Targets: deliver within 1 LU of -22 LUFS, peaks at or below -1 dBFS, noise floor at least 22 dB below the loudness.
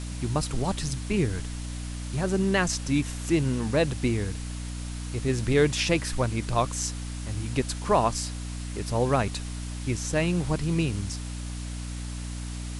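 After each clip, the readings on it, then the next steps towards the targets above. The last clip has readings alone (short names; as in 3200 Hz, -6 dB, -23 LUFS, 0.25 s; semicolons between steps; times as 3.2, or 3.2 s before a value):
hum 60 Hz; harmonics up to 300 Hz; hum level -32 dBFS; noise floor -35 dBFS; noise floor target -50 dBFS; loudness -28.0 LUFS; peak -9.0 dBFS; loudness target -22.0 LUFS
-> notches 60/120/180/240/300 Hz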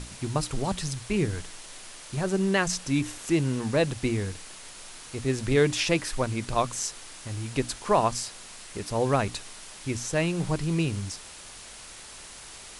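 hum none; noise floor -45 dBFS; noise floor target -50 dBFS
-> denoiser 6 dB, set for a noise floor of -45 dBFS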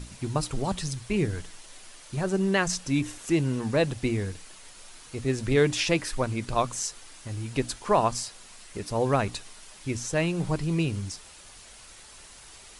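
noise floor -49 dBFS; noise floor target -50 dBFS
-> denoiser 6 dB, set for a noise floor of -49 dBFS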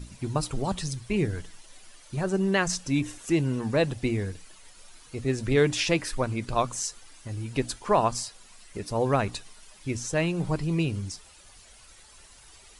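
noise floor -53 dBFS; loudness -28.0 LUFS; peak -10.0 dBFS; loudness target -22.0 LUFS
-> gain +6 dB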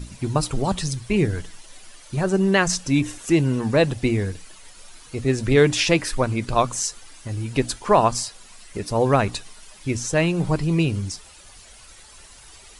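loudness -22.0 LUFS; peak -4.0 dBFS; noise floor -47 dBFS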